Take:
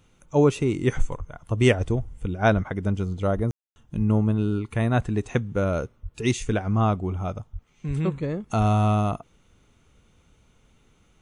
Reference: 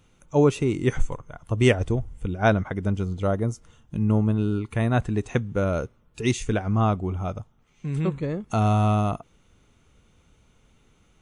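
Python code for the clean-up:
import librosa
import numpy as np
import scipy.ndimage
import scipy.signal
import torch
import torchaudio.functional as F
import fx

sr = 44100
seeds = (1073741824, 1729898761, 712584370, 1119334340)

y = fx.fix_deplosive(x, sr, at_s=(1.18, 2.54, 3.35, 3.96, 6.02, 7.52, 7.87, 8.58))
y = fx.fix_ambience(y, sr, seeds[0], print_start_s=10.67, print_end_s=11.17, start_s=3.51, end_s=3.76)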